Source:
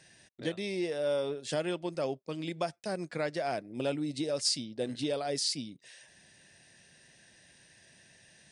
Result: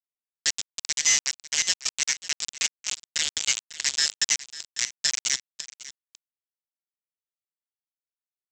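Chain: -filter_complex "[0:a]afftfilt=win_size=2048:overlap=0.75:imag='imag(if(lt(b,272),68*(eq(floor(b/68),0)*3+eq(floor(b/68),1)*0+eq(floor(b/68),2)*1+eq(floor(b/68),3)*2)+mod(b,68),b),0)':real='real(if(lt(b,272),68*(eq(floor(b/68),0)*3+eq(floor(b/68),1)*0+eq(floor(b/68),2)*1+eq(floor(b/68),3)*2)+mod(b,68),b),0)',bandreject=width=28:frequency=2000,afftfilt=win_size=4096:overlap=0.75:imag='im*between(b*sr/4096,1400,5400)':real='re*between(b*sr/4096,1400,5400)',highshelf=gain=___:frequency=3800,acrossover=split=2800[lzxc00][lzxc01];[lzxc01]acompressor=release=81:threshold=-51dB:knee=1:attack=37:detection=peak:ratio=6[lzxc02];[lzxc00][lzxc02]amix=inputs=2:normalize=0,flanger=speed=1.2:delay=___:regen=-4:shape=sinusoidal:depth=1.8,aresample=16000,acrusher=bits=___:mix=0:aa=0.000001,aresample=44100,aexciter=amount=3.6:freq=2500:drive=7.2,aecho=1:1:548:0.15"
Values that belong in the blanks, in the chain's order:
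9.5, 6.1, 4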